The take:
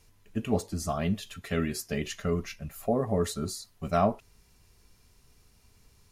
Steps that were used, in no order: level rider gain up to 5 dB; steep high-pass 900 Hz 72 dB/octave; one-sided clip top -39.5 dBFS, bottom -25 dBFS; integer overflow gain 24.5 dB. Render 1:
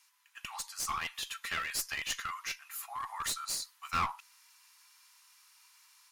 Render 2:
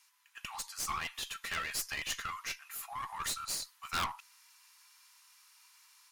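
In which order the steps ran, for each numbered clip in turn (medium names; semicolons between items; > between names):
steep high-pass > one-sided clip > integer overflow > level rider; steep high-pass > integer overflow > level rider > one-sided clip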